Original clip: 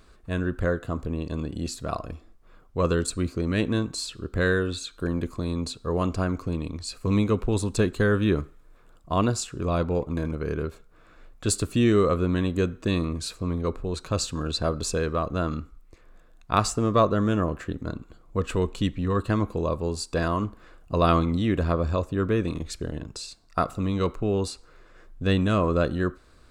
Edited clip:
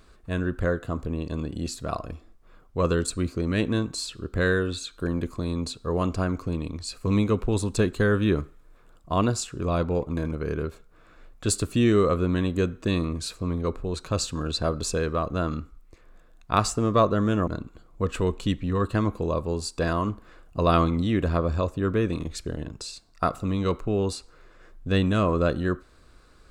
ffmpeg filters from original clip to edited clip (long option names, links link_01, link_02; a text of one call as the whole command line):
ffmpeg -i in.wav -filter_complex "[0:a]asplit=2[link_01][link_02];[link_01]atrim=end=17.472[link_03];[link_02]atrim=start=17.818[link_04];[link_03][link_04]acrossfade=duration=0.004:curve1=hsin:curve2=hsin" out.wav